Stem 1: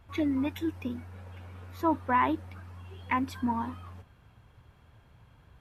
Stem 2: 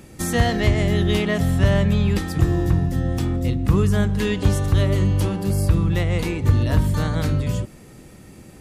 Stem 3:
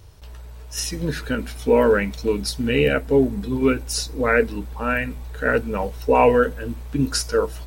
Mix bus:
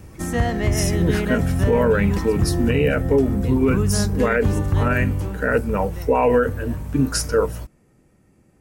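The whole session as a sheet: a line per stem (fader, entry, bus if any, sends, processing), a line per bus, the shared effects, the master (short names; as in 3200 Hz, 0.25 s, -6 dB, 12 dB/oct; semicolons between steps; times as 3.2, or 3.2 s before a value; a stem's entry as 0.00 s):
-13.0 dB, 0.00 s, no send, dry
4.96 s -1.5 dB -> 5.7 s -13.5 dB, 0.00 s, no send, high shelf 10000 Hz -9 dB
+3.0 dB, 0.00 s, no send, dry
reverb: off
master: bell 3800 Hz -9 dB 0.91 oct; limiter -8.5 dBFS, peak gain reduction 7.5 dB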